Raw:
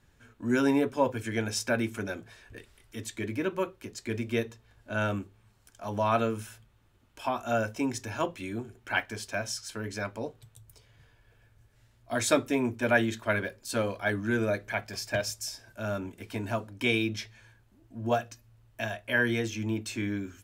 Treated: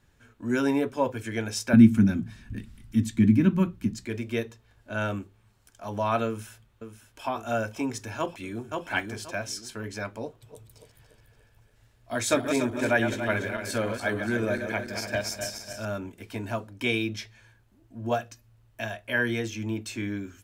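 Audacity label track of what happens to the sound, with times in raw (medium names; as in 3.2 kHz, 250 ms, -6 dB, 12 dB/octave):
1.730000	4.050000	resonant low shelf 320 Hz +13 dB, Q 3
6.270000	7.270000	echo throw 540 ms, feedback 65%, level -9.5 dB
8.180000	8.810000	echo throw 530 ms, feedback 25%, level -3 dB
10.260000	15.850000	backward echo that repeats 144 ms, feedback 68%, level -7 dB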